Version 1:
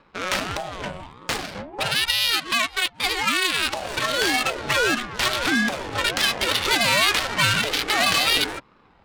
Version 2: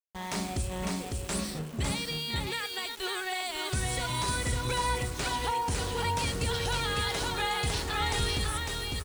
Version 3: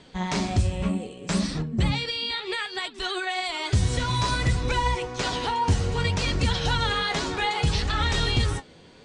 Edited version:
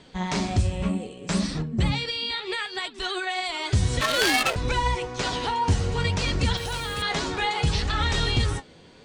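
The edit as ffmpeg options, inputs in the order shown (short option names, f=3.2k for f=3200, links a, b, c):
-filter_complex "[2:a]asplit=3[a][b][c];[a]atrim=end=4.012[d];[0:a]atrim=start=4.008:end=4.562[e];[b]atrim=start=4.558:end=6.572[f];[1:a]atrim=start=6.568:end=7.022[g];[c]atrim=start=7.018[h];[d][e]acrossfade=d=0.004:c1=hsin:c2=hsin[i];[i][f]acrossfade=d=0.004:c1=hsin:c2=hsin[j];[j][g]acrossfade=d=0.004:c1=hsin:c2=hsin[k];[k][h]acrossfade=d=0.004:c1=hsin:c2=hsin"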